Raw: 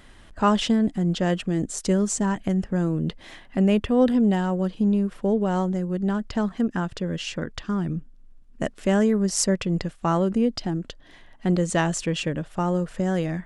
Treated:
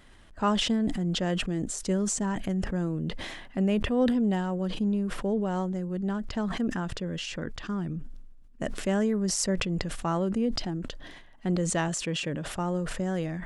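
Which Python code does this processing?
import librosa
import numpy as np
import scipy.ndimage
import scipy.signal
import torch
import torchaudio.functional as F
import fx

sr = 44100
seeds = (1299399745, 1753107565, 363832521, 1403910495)

y = fx.highpass(x, sr, hz=84.0, slope=6, at=(11.88, 12.56))
y = fx.sustainer(y, sr, db_per_s=39.0)
y = y * librosa.db_to_amplitude(-6.0)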